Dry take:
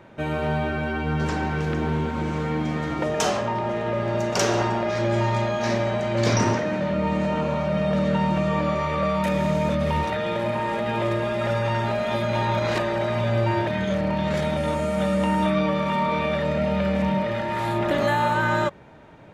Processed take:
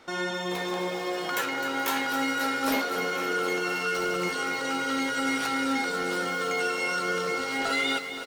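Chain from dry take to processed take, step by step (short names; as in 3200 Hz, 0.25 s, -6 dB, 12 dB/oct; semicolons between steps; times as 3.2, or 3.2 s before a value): doubler 34 ms -12 dB; speed mistake 33 rpm record played at 78 rpm; lo-fi delay 0.259 s, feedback 80%, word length 7-bit, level -11 dB; gain -6 dB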